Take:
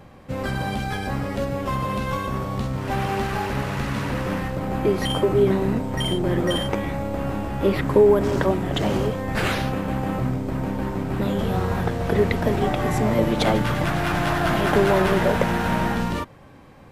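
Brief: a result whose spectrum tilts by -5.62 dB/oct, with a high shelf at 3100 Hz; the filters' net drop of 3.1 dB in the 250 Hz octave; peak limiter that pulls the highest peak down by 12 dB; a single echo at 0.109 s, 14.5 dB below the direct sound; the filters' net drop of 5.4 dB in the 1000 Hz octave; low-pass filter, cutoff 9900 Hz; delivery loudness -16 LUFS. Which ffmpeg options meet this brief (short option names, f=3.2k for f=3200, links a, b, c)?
-af "lowpass=9.9k,equalizer=f=250:t=o:g=-4,equalizer=f=1k:t=o:g=-6.5,highshelf=f=3.1k:g=-4,alimiter=limit=-18.5dB:level=0:latency=1,aecho=1:1:109:0.188,volume=12dB"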